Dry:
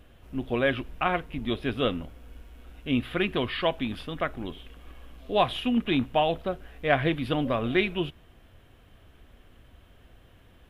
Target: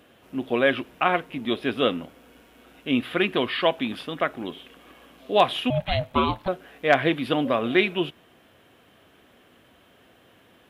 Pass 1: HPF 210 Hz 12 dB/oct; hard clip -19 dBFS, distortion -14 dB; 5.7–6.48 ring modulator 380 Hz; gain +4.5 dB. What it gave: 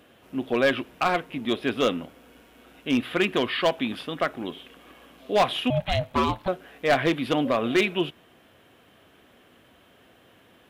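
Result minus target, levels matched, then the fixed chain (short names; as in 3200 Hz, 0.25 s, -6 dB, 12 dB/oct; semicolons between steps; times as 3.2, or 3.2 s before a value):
hard clip: distortion +23 dB
HPF 210 Hz 12 dB/oct; hard clip -9.5 dBFS, distortion -37 dB; 5.7–6.48 ring modulator 380 Hz; gain +4.5 dB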